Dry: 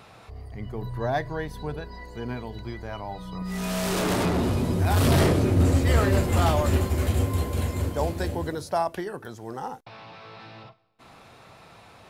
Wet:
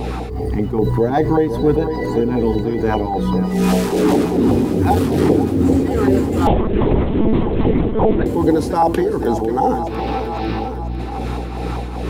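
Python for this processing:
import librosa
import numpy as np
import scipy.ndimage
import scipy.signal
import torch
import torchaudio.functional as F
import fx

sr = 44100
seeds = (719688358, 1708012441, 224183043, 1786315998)

y = fx.filter_lfo_notch(x, sr, shape='saw_down', hz=5.1, low_hz=450.0, high_hz=1500.0, q=0.92)
y = fx.mod_noise(y, sr, seeds[0], snr_db=32)
y = fx.small_body(y, sr, hz=(300.0, 430.0, 770.0), ring_ms=25, db=17)
y = fx.add_hum(y, sr, base_hz=60, snr_db=24)
y = fx.tremolo_shape(y, sr, shape='triangle', hz=2.5, depth_pct=85)
y = fx.rider(y, sr, range_db=5, speed_s=0.5)
y = fx.echo_feedback(y, sr, ms=501, feedback_pct=55, wet_db=-14.5)
y = fx.lpc_monotone(y, sr, seeds[1], pitch_hz=220.0, order=10, at=(6.47, 8.26))
y = fx.env_flatten(y, sr, amount_pct=50)
y = y * librosa.db_to_amplitude(1.0)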